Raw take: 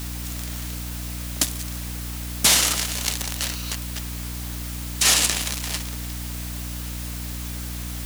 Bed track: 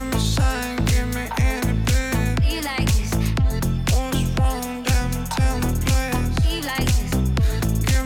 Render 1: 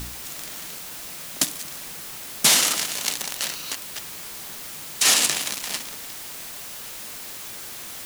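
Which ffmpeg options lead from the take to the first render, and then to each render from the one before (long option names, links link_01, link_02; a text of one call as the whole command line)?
ffmpeg -i in.wav -af "bandreject=frequency=60:width_type=h:width=4,bandreject=frequency=120:width_type=h:width=4,bandreject=frequency=180:width_type=h:width=4,bandreject=frequency=240:width_type=h:width=4,bandreject=frequency=300:width_type=h:width=4" out.wav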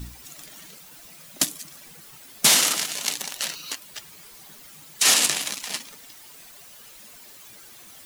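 ffmpeg -i in.wav -af "afftdn=noise_reduction=12:noise_floor=-37" out.wav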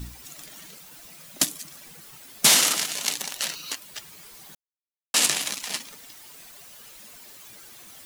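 ffmpeg -i in.wav -filter_complex "[0:a]asplit=3[link_01][link_02][link_03];[link_01]atrim=end=4.55,asetpts=PTS-STARTPTS,afade=type=out:start_time=4.546:duration=0.004:curve=hsin[link_04];[link_02]atrim=start=4.55:end=5.14,asetpts=PTS-STARTPTS,volume=0[link_05];[link_03]atrim=start=5.14,asetpts=PTS-STARTPTS,afade=type=in:duration=0.004:curve=hsin[link_06];[link_04][link_05][link_06]concat=n=3:v=0:a=1" out.wav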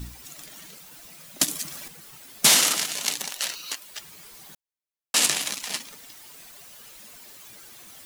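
ffmpeg -i in.wav -filter_complex "[0:a]asettb=1/sr,asplit=3[link_01][link_02][link_03];[link_01]atrim=end=1.484[link_04];[link_02]atrim=start=1.48:end=1.88,asetpts=PTS-STARTPTS,afade=type=in:duration=0.004:curve=qsin,afade=type=out:start_time=0.396:duration=0.004:curve=qsin,acontrast=71[link_05];[link_03]atrim=start=1.876[link_06];[link_04][link_05]acrossfade=duration=0.004:curve1=hsin:curve2=qsin[link_07];[link_07][link_06]acrossfade=duration=0.004:curve1=qsin:curve2=hsin,asettb=1/sr,asplit=3[link_08][link_09][link_10];[link_08]atrim=end=3.304[link_11];[link_09]atrim=start=3.3:end=4,asetpts=PTS-STARTPTS,afade=type=in:duration=0.004:curve=qsin,afade=type=out:start_time=0.696:duration=0.004:curve=qsin,equalizer=frequency=110:width=0.56:gain=-11[link_12];[link_10]atrim=start=3.996[link_13];[link_11][link_12]acrossfade=duration=0.004:curve1=hsin:curve2=qsin[link_14];[link_14][link_13]acrossfade=duration=0.004:curve1=qsin:curve2=hsin" out.wav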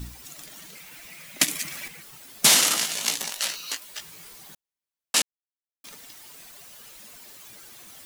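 ffmpeg -i in.wav -filter_complex "[0:a]asettb=1/sr,asplit=3[link_01][link_02][link_03];[link_01]atrim=end=0.754[link_04];[link_02]atrim=start=0.75:end=2.03,asetpts=PTS-STARTPTS,afade=type=in:duration=0.004:curve=qsin,afade=type=out:start_time=1.276:duration=0.004:curve=qsin,equalizer=frequency=2200:width_type=o:width=0.69:gain=11.5[link_05];[link_03]atrim=start=2.026[link_06];[link_04][link_05]acrossfade=duration=0.004:curve1=hsin:curve2=qsin[link_07];[link_07][link_06]acrossfade=duration=0.004:curve1=qsin:curve2=hsin,asettb=1/sr,asplit=3[link_08][link_09][link_10];[link_08]atrim=end=2.694[link_11];[link_09]atrim=start=2.69:end=4.33,asetpts=PTS-STARTPTS,afade=type=in:duration=0.004:curve=qsin,afade=type=out:start_time=1.636:duration=0.004:curve=qsin,asplit=2[link_12][link_13];[link_13]adelay=18,volume=-5.5dB[link_14];[link_12][link_14]amix=inputs=2:normalize=0,atrim=end_sample=72324[link_15];[link_10]atrim=start=4.326[link_16];[link_11][link_15]acrossfade=duration=0.004:curve1=hsin:curve2=qsin[link_17];[link_17][link_16]acrossfade=duration=0.004:curve1=qsin:curve2=hsin,asplit=3[link_18][link_19][link_20];[link_18]atrim=end=5.22,asetpts=PTS-STARTPTS,afade=type=out:start_time=5.216:duration=0.004:curve=hsin[link_21];[link_19]atrim=start=5.22:end=5.84,asetpts=PTS-STARTPTS,volume=0[link_22];[link_20]atrim=start=5.84,asetpts=PTS-STARTPTS,afade=type=in:duration=0.004:curve=hsin[link_23];[link_21][link_22][link_23]concat=n=3:v=0:a=1" out.wav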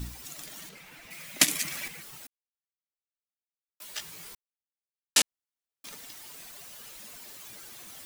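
ffmpeg -i in.wav -filter_complex "[0:a]asettb=1/sr,asplit=3[link_01][link_02][link_03];[link_01]atrim=end=0.694[link_04];[link_02]atrim=start=0.69:end=1.11,asetpts=PTS-STARTPTS,afade=type=in:duration=0.004:curve=qsin,afade=type=out:start_time=0.416:duration=0.004:curve=qsin,highshelf=frequency=4100:gain=-11.5[link_05];[link_03]atrim=start=1.106[link_06];[link_04][link_05]acrossfade=duration=0.004:curve1=hsin:curve2=qsin[link_07];[link_07][link_06]acrossfade=duration=0.004:curve1=qsin:curve2=hsin,asplit=5[link_08][link_09][link_10][link_11][link_12];[link_08]atrim=end=2.27,asetpts=PTS-STARTPTS,afade=type=out:start_time=2.266:duration=0.004:curve=hsin[link_13];[link_09]atrim=start=2.27:end=3.8,asetpts=PTS-STARTPTS,volume=0[link_14];[link_10]atrim=start=3.8:end=4.35,asetpts=PTS-STARTPTS,afade=type=in:duration=0.004:curve=hsin,afade=type=out:start_time=0.546:duration=0.004:curve=hsin[link_15];[link_11]atrim=start=4.35:end=5.16,asetpts=PTS-STARTPTS,volume=0[link_16];[link_12]atrim=start=5.16,asetpts=PTS-STARTPTS,afade=type=in:duration=0.004:curve=hsin[link_17];[link_13][link_14][link_15][link_16][link_17]concat=n=5:v=0:a=1" out.wav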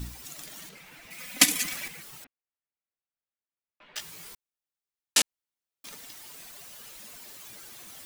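ffmpeg -i in.wav -filter_complex "[0:a]asettb=1/sr,asplit=3[link_01][link_02][link_03];[link_01]atrim=end=1.184[link_04];[link_02]atrim=start=1.18:end=1.74,asetpts=PTS-STARTPTS,afade=type=in:duration=0.004:curve=qsin,afade=type=out:start_time=0.556:duration=0.004:curve=qsin,aecho=1:1:4:0.89,atrim=end_sample=24696[link_05];[link_03]atrim=start=1.736[link_06];[link_04][link_05]acrossfade=duration=0.004:curve1=hsin:curve2=qsin[link_07];[link_07][link_06]acrossfade=duration=0.004:curve1=qsin:curve2=hsin,asettb=1/sr,asplit=3[link_08][link_09][link_10];[link_08]atrim=end=2.244[link_11];[link_09]atrim=start=2.24:end=3.96,asetpts=PTS-STARTPTS,afade=type=in:duration=0.004:curve=qsin,afade=type=out:start_time=1.716:duration=0.004:curve=qsin,lowpass=frequency=2700:width=0.5412,lowpass=frequency=2700:width=1.3066[link_12];[link_10]atrim=start=3.956[link_13];[link_11][link_12]acrossfade=duration=0.004:curve1=hsin:curve2=qsin[link_14];[link_14][link_13]acrossfade=duration=0.004:curve1=qsin:curve2=hsin" out.wav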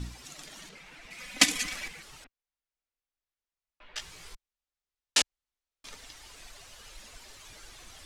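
ffmpeg -i in.wav -af "lowpass=7000,asubboost=boost=11.5:cutoff=52" out.wav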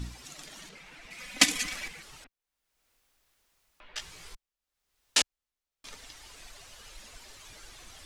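ffmpeg -i in.wav -af "acompressor=mode=upward:threshold=-54dB:ratio=2.5" out.wav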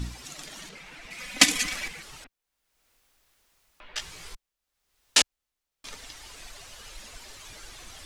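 ffmpeg -i in.wav -af "volume=4.5dB,alimiter=limit=-1dB:level=0:latency=1" out.wav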